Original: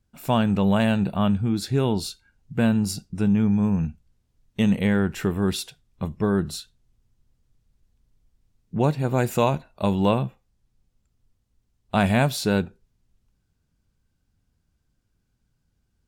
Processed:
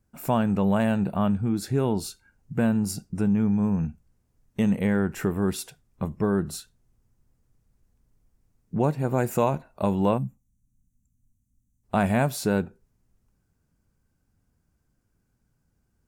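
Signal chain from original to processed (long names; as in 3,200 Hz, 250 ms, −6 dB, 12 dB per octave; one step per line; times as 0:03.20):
in parallel at +2 dB: downward compressor, threshold −29 dBFS, peak gain reduction 13.5 dB
on the sum: parametric band 3,600 Hz −10.5 dB 1.2 octaves
gain on a spectral selection 0:10.18–0:11.84, 290–5,700 Hz −21 dB
low-shelf EQ 110 Hz −6 dB
level −3.5 dB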